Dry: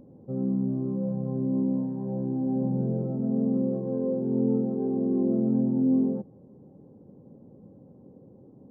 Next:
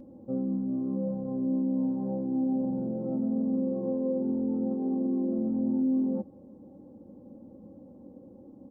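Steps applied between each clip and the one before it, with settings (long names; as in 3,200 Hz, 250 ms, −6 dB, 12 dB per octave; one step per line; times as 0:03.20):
brickwall limiter −25 dBFS, peak gain reduction 10 dB
comb filter 3.6 ms, depth 72%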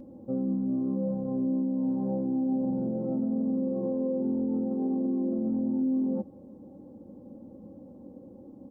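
brickwall limiter −24 dBFS, peak gain reduction 3.5 dB
level +2 dB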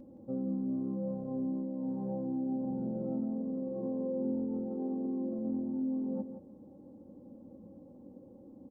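single-tap delay 170 ms −9.5 dB
level −5.5 dB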